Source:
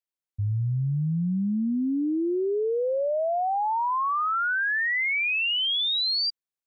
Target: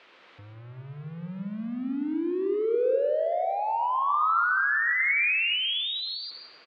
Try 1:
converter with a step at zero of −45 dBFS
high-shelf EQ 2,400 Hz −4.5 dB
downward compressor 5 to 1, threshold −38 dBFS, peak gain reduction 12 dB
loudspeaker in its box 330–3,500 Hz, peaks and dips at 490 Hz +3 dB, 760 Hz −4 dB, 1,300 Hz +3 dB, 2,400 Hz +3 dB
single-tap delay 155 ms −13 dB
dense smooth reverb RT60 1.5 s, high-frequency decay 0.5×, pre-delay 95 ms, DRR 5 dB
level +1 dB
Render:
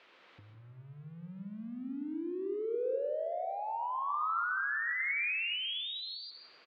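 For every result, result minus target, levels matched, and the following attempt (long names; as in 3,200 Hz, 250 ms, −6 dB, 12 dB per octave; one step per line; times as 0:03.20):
downward compressor: peak gain reduction +9 dB; converter with a step at zero: distortion −6 dB
converter with a step at zero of −45 dBFS
high-shelf EQ 2,400 Hz −4.5 dB
downward compressor 5 to 1, threshold −26.5 dBFS, peak gain reduction 3 dB
loudspeaker in its box 330–3,500 Hz, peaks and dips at 490 Hz +3 dB, 760 Hz −4 dB, 1,300 Hz +3 dB, 2,400 Hz +3 dB
single-tap delay 155 ms −13 dB
dense smooth reverb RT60 1.5 s, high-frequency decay 0.5×, pre-delay 95 ms, DRR 5 dB
level +1 dB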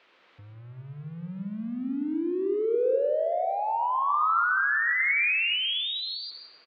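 converter with a step at zero: distortion −6 dB
converter with a step at zero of −39 dBFS
high-shelf EQ 2,400 Hz −4.5 dB
downward compressor 5 to 1, threshold −26.5 dBFS, peak gain reduction 3 dB
loudspeaker in its box 330–3,500 Hz, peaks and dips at 490 Hz +3 dB, 760 Hz −4 dB, 1,300 Hz +3 dB, 2,400 Hz +3 dB
single-tap delay 155 ms −13 dB
dense smooth reverb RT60 1.5 s, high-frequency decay 0.5×, pre-delay 95 ms, DRR 5 dB
level +1 dB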